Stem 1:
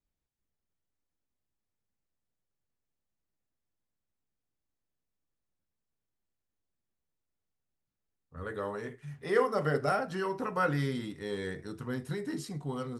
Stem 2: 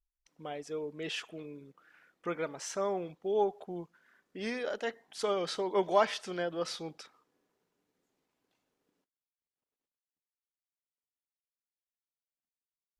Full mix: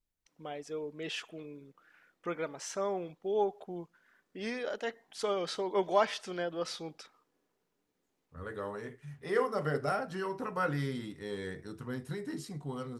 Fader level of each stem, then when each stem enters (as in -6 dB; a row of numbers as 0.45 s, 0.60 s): -3.0 dB, -1.0 dB; 0.00 s, 0.00 s